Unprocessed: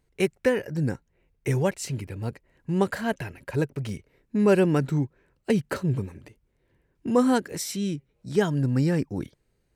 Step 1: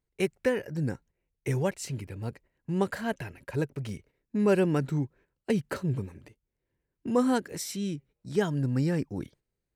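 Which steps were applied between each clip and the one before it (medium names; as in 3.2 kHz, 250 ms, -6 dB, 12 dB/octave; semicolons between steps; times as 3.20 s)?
gate -50 dBFS, range -10 dB; trim -4 dB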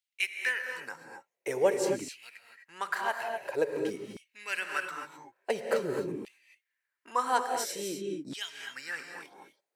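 gated-style reverb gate 280 ms rising, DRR 4.5 dB; LFO high-pass saw down 0.48 Hz 280–3100 Hz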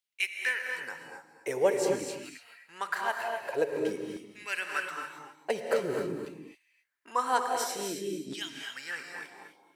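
gated-style reverb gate 310 ms rising, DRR 8 dB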